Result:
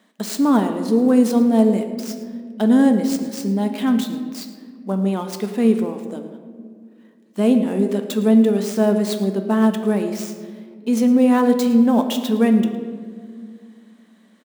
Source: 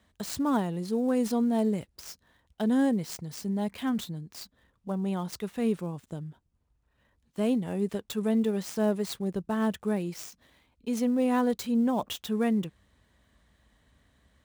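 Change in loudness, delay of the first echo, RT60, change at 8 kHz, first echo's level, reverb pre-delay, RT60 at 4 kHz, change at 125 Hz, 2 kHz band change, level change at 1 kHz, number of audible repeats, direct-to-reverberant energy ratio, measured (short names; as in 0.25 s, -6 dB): +11.0 dB, 0.11 s, 2.0 s, +8.0 dB, -17.5 dB, 5 ms, 1.0 s, +8.0 dB, +8.5 dB, +9.0 dB, 1, 6.0 dB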